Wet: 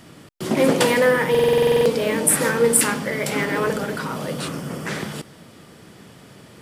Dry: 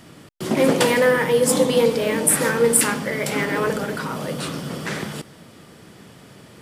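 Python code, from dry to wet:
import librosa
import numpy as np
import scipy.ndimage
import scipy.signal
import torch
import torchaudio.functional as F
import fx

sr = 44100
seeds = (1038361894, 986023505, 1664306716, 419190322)

y = fx.peak_eq(x, sr, hz=3900.0, db=-8.5, octaves=0.69, at=(4.48, 4.89))
y = fx.buffer_glitch(y, sr, at_s=(1.3,), block=2048, repeats=11)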